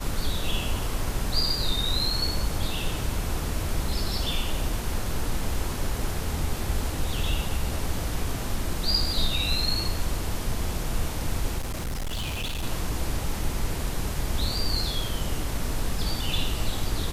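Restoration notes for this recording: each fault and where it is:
0:11.58–0:12.64: clipping −26.5 dBFS

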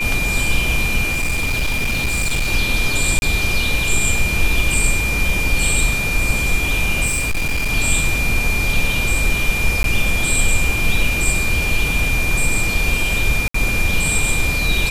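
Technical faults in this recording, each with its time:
whistle 2,400 Hz −20 dBFS
0:01.11–0:02.52: clipping −15 dBFS
0:03.19–0:03.22: drop-out 31 ms
0:07.06–0:07.71: clipping −15.5 dBFS
0:09.83–0:09.84: drop-out 12 ms
0:13.48–0:13.54: drop-out 64 ms

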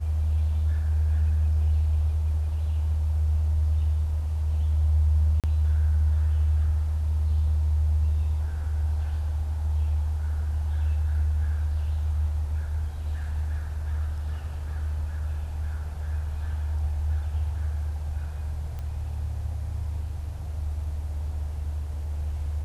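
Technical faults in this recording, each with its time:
0:05.40–0:05.44: drop-out 37 ms
0:18.79: click −25 dBFS

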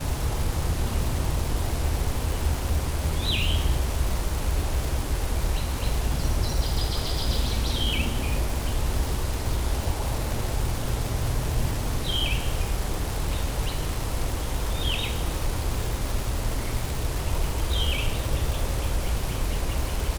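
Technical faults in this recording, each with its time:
surface crackle 430 per second −28 dBFS

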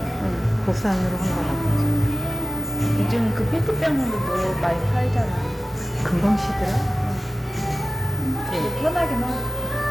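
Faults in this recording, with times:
0:03.12–0:04.66: clipping −16.5 dBFS

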